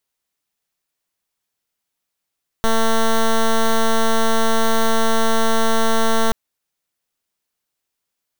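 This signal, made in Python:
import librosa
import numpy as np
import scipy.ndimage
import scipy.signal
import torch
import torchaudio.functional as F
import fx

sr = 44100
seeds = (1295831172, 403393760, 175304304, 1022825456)

y = fx.pulse(sr, length_s=3.68, hz=225.0, level_db=-14.5, duty_pct=9)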